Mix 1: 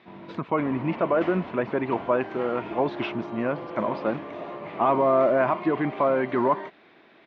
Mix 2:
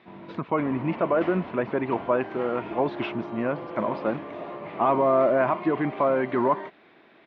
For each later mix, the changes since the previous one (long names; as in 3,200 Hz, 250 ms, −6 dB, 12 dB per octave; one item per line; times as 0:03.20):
master: add high-frequency loss of the air 80 metres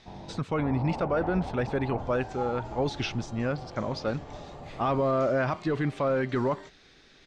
first sound: add low-pass with resonance 820 Hz, resonance Q 5
second sound −7.0 dB
master: remove loudspeaker in its box 180–2,900 Hz, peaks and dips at 210 Hz +5 dB, 340 Hz +7 dB, 660 Hz +7 dB, 1,000 Hz +10 dB, 2,200 Hz +3 dB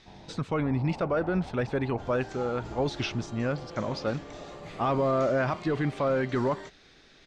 first sound −6.5 dB
second sound +4.5 dB